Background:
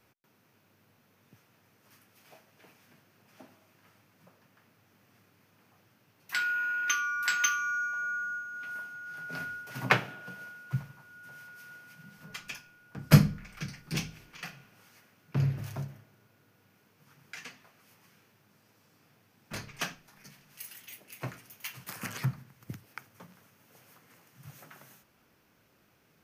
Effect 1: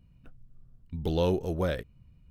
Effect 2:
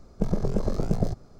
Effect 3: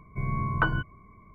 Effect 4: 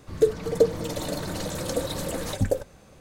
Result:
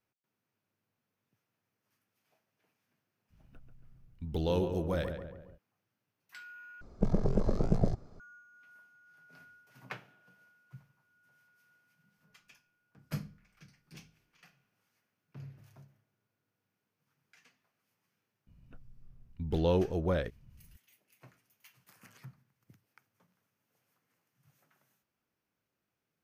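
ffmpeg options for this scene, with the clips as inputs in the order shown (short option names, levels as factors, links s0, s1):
-filter_complex "[1:a]asplit=2[s0][s1];[0:a]volume=0.106[s2];[s0]asplit=2[s3][s4];[s4]adelay=138,lowpass=f=2000:p=1,volume=0.447,asplit=2[s5][s6];[s6]adelay=138,lowpass=f=2000:p=1,volume=0.5,asplit=2[s7][s8];[s8]adelay=138,lowpass=f=2000:p=1,volume=0.5,asplit=2[s9][s10];[s10]adelay=138,lowpass=f=2000:p=1,volume=0.5,asplit=2[s11][s12];[s12]adelay=138,lowpass=f=2000:p=1,volume=0.5,asplit=2[s13][s14];[s14]adelay=138,lowpass=f=2000:p=1,volume=0.5[s15];[s3][s5][s7][s9][s11][s13][s15]amix=inputs=7:normalize=0[s16];[2:a]lowpass=f=3600:p=1[s17];[s1]lowpass=f=3200:p=1[s18];[s2]asplit=2[s19][s20];[s19]atrim=end=6.814[s21];[s17]atrim=end=1.39,asetpts=PTS-STARTPTS,volume=0.708[s22];[s20]atrim=start=8.196[s23];[s16]atrim=end=2.3,asetpts=PTS-STARTPTS,volume=0.596,afade=t=in:d=0.05,afade=t=out:st=2.25:d=0.05,adelay=145089S[s24];[s18]atrim=end=2.3,asetpts=PTS-STARTPTS,volume=0.841,afade=t=in:d=0.004:c=hsin,afade=t=out:st=2.296:d=0.004:c=hsin,adelay=18470[s25];[s21][s22]acrossfade=d=0.004:c1=hsin:c2=hsin[s26];[s26][s23]acrossfade=d=0.004:c1=hsin:c2=hsin[s27];[s27][s24][s25]amix=inputs=3:normalize=0"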